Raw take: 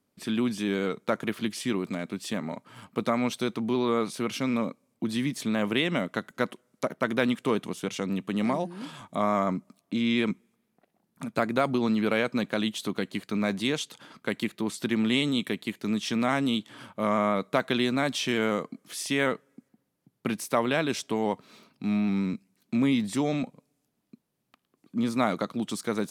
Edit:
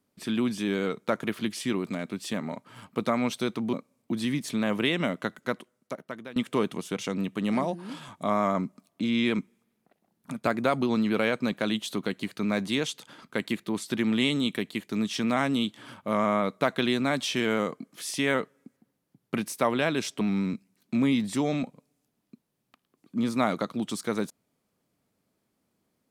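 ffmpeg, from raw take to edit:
-filter_complex "[0:a]asplit=4[a][b][c][d];[a]atrim=end=3.732[e];[b]atrim=start=4.648:end=7.28,asetpts=PTS-STARTPTS,afade=t=out:st=1.522:d=1.11:silence=0.0841395[f];[c]atrim=start=7.28:end=21.132,asetpts=PTS-STARTPTS,afade=t=in:d=0.004:c=hsin:silence=0.0841395[g];[d]atrim=start=22.008[h];[f][g]concat=n=2:v=0:a=1[i];[e][i]acrossfade=d=0.004:c1=hsin:c2=hsin[j];[j][h]acrossfade=d=0.004:c1=hsin:c2=hsin"

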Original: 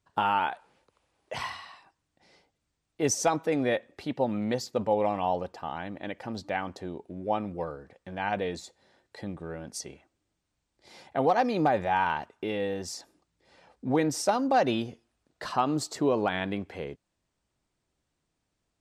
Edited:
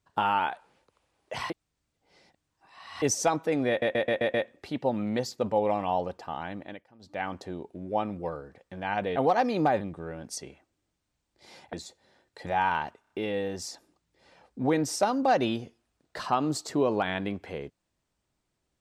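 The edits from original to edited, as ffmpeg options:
-filter_complex "[0:a]asplit=17[a][b][c][d][e][f][g][h][i][j][k][l][m][n][o][p][q];[a]atrim=end=1.502[r];[b]atrim=start=1.498:end=3.022,asetpts=PTS-STARTPTS,areverse[s];[c]atrim=start=3.018:end=3.822[t];[d]atrim=start=3.688:end=3.822[u];[e]atrim=start=3.688:end=3.822[v];[f]atrim=start=3.688:end=3.822[w];[g]atrim=start=3.688:end=3.822[x];[h]atrim=start=3.688:end=6.21,asetpts=PTS-STARTPTS,afade=t=out:st=2.242:d=0.28:silence=0.0841395[y];[i]atrim=start=6.21:end=6.34,asetpts=PTS-STARTPTS,volume=-21.5dB[z];[j]atrim=start=6.34:end=8.512,asetpts=PTS-STARTPTS,afade=t=in:d=0.28:silence=0.0841395[aa];[k]atrim=start=11.158:end=11.812[ab];[l]atrim=start=9.238:end=11.162[ac];[m]atrim=start=8.508:end=9.242[ad];[n]atrim=start=11.808:end=12.392[ae];[o]atrim=start=12.358:end=12.392[af];[p]atrim=start=12.358:end=12.392[ag];[q]atrim=start=12.358[ah];[r][s]acrossfade=d=0.004:c1=hsin:c2=hsin[ai];[ai][t]acrossfade=d=0.004:c1=hsin:c2=hsin[aj];[aj][u]acrossfade=d=0.004:c1=hsin:c2=hsin[ak];[ak][v]acrossfade=d=0.004:c1=hsin:c2=hsin[al];[al][w]acrossfade=d=0.004:c1=hsin:c2=hsin[am];[am][x]acrossfade=d=0.004:c1=hsin:c2=hsin[an];[y][z][aa]concat=n=3:v=0:a=1[ao];[an][ao]acrossfade=d=0.004:c1=hsin:c2=hsin[ap];[ap][ab]acrossfade=d=0.004:c1=hsin:c2=hsin[aq];[aq][ac]acrossfade=d=0.004:c1=hsin:c2=hsin[ar];[ar][ad]acrossfade=d=0.004:c1=hsin:c2=hsin[as];[as][ae]acrossfade=d=0.004:c1=hsin:c2=hsin[at];[at][af]acrossfade=d=0.004:c1=hsin:c2=hsin[au];[au][ag]acrossfade=d=0.004:c1=hsin:c2=hsin[av];[av][ah]acrossfade=d=0.004:c1=hsin:c2=hsin"

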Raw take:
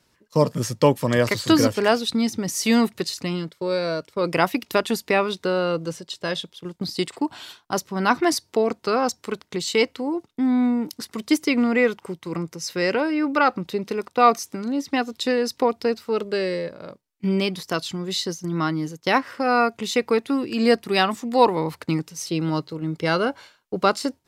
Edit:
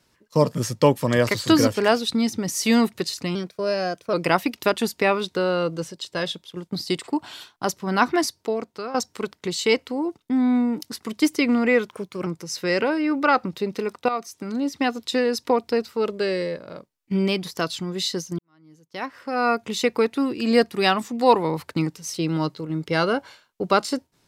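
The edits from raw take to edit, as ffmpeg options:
-filter_complex "[0:a]asplit=8[a][b][c][d][e][f][g][h];[a]atrim=end=3.354[i];[b]atrim=start=3.35:end=4.22,asetpts=PTS-STARTPTS,asetrate=48951,aresample=44100[j];[c]atrim=start=4.216:end=9.03,asetpts=PTS-STARTPTS,afade=t=out:st=3.904:d=0.91:silence=0.223872[k];[d]atrim=start=9.03:end=11.984,asetpts=PTS-STARTPTS,afade=t=in:d=0.004:c=hsin:silence=0.223872[l];[e]atrim=start=11.98:end=12.39,asetpts=PTS-STARTPTS,asetrate=48510,aresample=44100,atrim=end_sample=16437,asetpts=PTS-STARTPTS[m];[f]atrim=start=12.386:end=14.21,asetpts=PTS-STARTPTS,afade=t=out:st=1.82:d=0.004:c=hsin:silence=0.237137[n];[g]atrim=start=14.21:end=18.51,asetpts=PTS-STARTPTS,afade=t=in:d=0.41:c=qua:silence=0.237137,afade=t=out:st=4.296:d=0.004:c=hsin[o];[h]atrim=start=18.51,asetpts=PTS-STARTPTS,afade=t=in:d=1.22:c=qua[p];[i][j]acrossfade=d=0.004:c1=hsin:c2=hsin[q];[k][l]concat=n=2:v=0:a=1[r];[q][r]acrossfade=d=0.004:c1=hsin:c2=hsin[s];[s][m]acrossfade=d=0.004:c1=hsin:c2=hsin[t];[n][o][p]concat=n=3:v=0:a=1[u];[t][u]acrossfade=d=0.004:c1=hsin:c2=hsin"

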